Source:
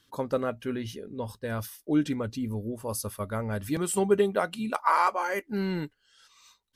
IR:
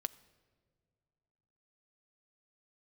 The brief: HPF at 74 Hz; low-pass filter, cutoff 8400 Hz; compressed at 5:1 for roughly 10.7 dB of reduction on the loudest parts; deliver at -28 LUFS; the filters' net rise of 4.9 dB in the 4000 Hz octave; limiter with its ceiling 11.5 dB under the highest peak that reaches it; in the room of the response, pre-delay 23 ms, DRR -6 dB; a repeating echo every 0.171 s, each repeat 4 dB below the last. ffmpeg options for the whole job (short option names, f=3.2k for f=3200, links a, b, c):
-filter_complex "[0:a]highpass=74,lowpass=8.4k,equalizer=f=4k:t=o:g=6.5,acompressor=threshold=-30dB:ratio=5,alimiter=level_in=4dB:limit=-24dB:level=0:latency=1,volume=-4dB,aecho=1:1:171|342|513|684|855|1026|1197|1368|1539:0.631|0.398|0.25|0.158|0.0994|0.0626|0.0394|0.0249|0.0157,asplit=2[a][b];[1:a]atrim=start_sample=2205,adelay=23[c];[b][c]afir=irnorm=-1:irlink=0,volume=7dB[d];[a][d]amix=inputs=2:normalize=0,volume=0.5dB"